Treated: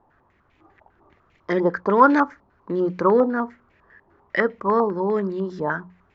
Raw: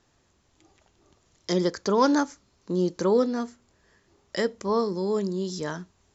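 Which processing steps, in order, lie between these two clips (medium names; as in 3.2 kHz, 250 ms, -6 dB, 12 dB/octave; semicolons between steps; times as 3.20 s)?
hum notches 60/120/180 Hz; step-sequenced low-pass 10 Hz 880–2300 Hz; trim +3 dB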